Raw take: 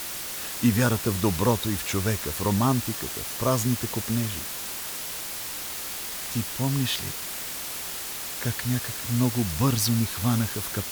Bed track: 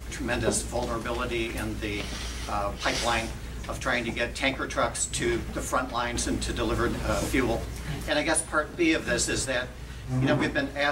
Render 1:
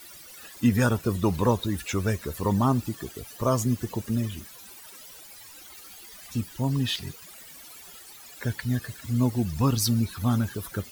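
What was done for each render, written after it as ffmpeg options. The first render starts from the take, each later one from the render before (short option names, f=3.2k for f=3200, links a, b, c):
-af "afftdn=nr=17:nf=-34"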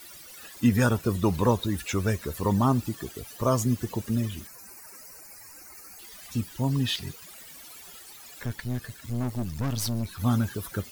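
-filter_complex "[0:a]asettb=1/sr,asplit=3[a][b][c];[a]atrim=end=4.474[d];[b]atrim=start=4.47:end=5.99,asetpts=PTS-STARTPTS,afade=t=in:d=0.004:c=qsin,afade=t=out:st=1.516:d=0.004:c=qsin,asuperstop=centerf=3400:order=4:qfactor=1.5[e];[c]atrim=start=5.986[f];[d][e]acrossfade=d=0.004:c1=hsin:c2=qsin[g];[g][f]acrossfade=d=0.004:c1=qsin:c2=hsin,asettb=1/sr,asplit=3[h][i][j];[h]atrim=end=8.424[k];[i]atrim=start=8.42:end=10.19,asetpts=PTS-STARTPTS,afade=t=in:d=0.004:c=qsin,afade=t=out:st=1.766:d=0.004:c=qsin,aeval=exprs='(tanh(17.8*val(0)+0.6)-tanh(0.6))/17.8':c=same[l];[j]atrim=start=10.186[m];[k][l]acrossfade=d=0.004:c1=hsin:c2=qsin[n];[n][m]acrossfade=d=0.004:c1=qsin:c2=hsin"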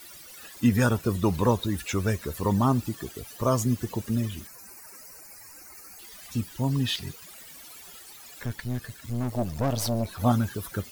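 -filter_complex "[0:a]asettb=1/sr,asplit=3[a][b][c];[a]atrim=end=9.324[d];[b]atrim=start=9.32:end=10.32,asetpts=PTS-STARTPTS,afade=t=in:d=0.004:c=qsin,afade=t=out:st=0.996:d=0.004:c=qsin,equalizer=f=620:t=o:w=1.1:g=13[e];[c]atrim=start=10.316[f];[d][e]acrossfade=d=0.004:c1=hsin:c2=qsin[g];[g][f]acrossfade=d=0.004:c1=qsin:c2=hsin"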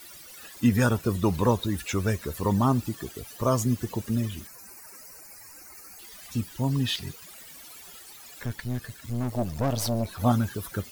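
-af anull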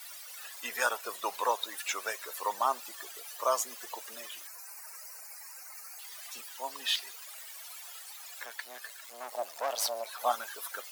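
-af "highpass=f=630:w=0.5412,highpass=f=630:w=1.3066"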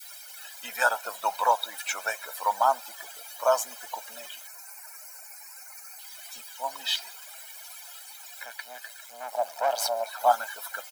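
-af "adynamicequalizer=threshold=0.00708:dfrequency=830:dqfactor=0.75:tfrequency=830:tqfactor=0.75:attack=5:release=100:ratio=0.375:range=3:mode=boostabove:tftype=bell,aecho=1:1:1.3:0.69"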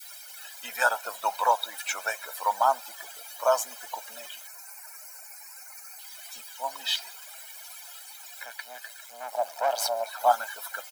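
-af "lowshelf=f=110:g=-8.5"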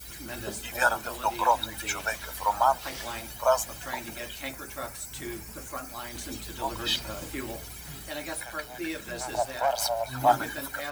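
-filter_complex "[1:a]volume=-11dB[a];[0:a][a]amix=inputs=2:normalize=0"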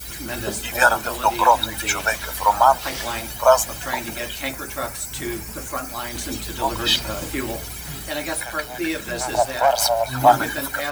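-af "volume=9dB,alimiter=limit=-2dB:level=0:latency=1"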